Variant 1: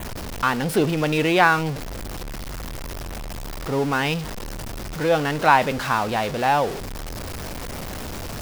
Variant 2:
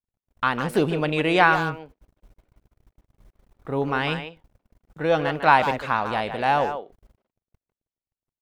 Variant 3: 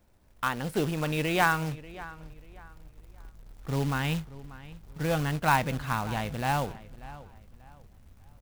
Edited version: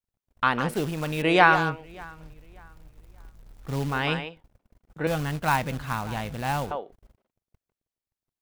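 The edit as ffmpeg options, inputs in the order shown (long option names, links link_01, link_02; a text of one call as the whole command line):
ffmpeg -i take0.wav -i take1.wav -i take2.wav -filter_complex "[2:a]asplit=3[link_01][link_02][link_03];[1:a]asplit=4[link_04][link_05][link_06][link_07];[link_04]atrim=end=0.742[link_08];[link_01]atrim=start=0.738:end=1.222[link_09];[link_05]atrim=start=1.218:end=1.93[link_10];[link_02]atrim=start=1.69:end=4.1[link_11];[link_06]atrim=start=3.86:end=5.072[link_12];[link_03]atrim=start=5.068:end=6.712[link_13];[link_07]atrim=start=6.708[link_14];[link_08][link_09]acrossfade=duration=0.004:curve1=hsin:curve2=hsin[link_15];[link_15][link_10]acrossfade=duration=0.004:curve1=hsin:curve2=hsin[link_16];[link_16][link_11]acrossfade=duration=0.24:curve1=tri:curve2=tri[link_17];[link_17][link_12]acrossfade=duration=0.24:curve1=tri:curve2=tri[link_18];[link_18][link_13]acrossfade=duration=0.004:curve1=hsin:curve2=hsin[link_19];[link_19][link_14]acrossfade=duration=0.004:curve1=hsin:curve2=hsin" out.wav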